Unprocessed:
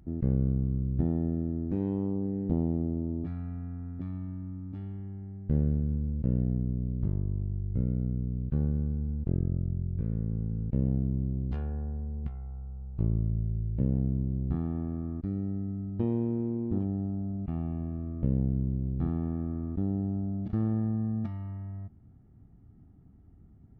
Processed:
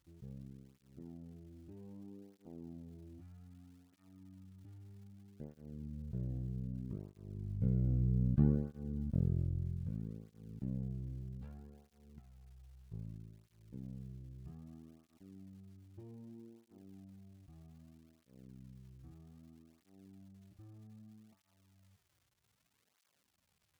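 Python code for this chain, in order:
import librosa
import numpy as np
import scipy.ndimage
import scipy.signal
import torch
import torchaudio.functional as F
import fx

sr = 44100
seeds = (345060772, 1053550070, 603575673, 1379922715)

y = fx.doppler_pass(x, sr, speed_mps=6, closest_m=2.9, pass_at_s=8.41)
y = fx.dmg_crackle(y, sr, seeds[0], per_s=310.0, level_db=-61.0)
y = fx.flanger_cancel(y, sr, hz=0.63, depth_ms=4.9)
y = y * librosa.db_to_amplitude(3.0)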